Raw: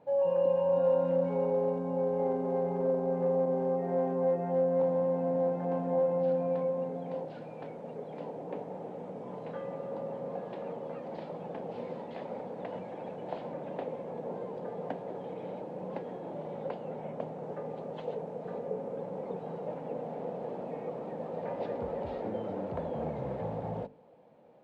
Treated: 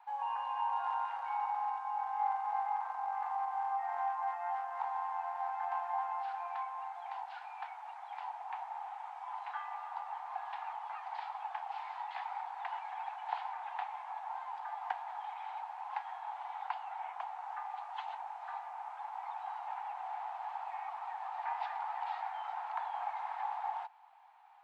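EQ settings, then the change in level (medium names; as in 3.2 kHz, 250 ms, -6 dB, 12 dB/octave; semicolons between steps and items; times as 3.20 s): steep high-pass 770 Hz 96 dB/octave; treble shelf 2.6 kHz -9.5 dB; +9.5 dB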